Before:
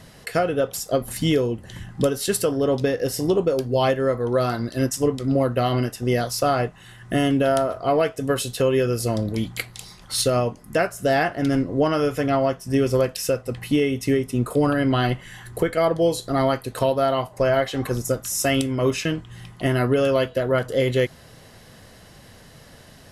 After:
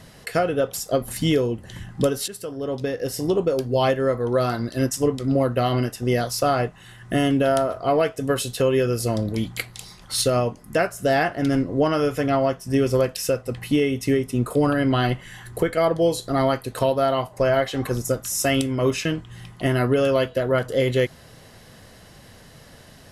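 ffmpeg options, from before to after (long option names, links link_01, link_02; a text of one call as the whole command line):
ffmpeg -i in.wav -filter_complex "[0:a]asplit=2[link_01][link_02];[link_01]atrim=end=2.28,asetpts=PTS-STARTPTS,afade=type=out:start_time=2.276:duration=0.004:curve=hsin:silence=0.149624[link_03];[link_02]atrim=start=2.28,asetpts=PTS-STARTPTS,afade=type=in:duration=1.64:curve=qsin:silence=0.149624[link_04];[link_03][link_04]concat=n=2:v=0:a=1" out.wav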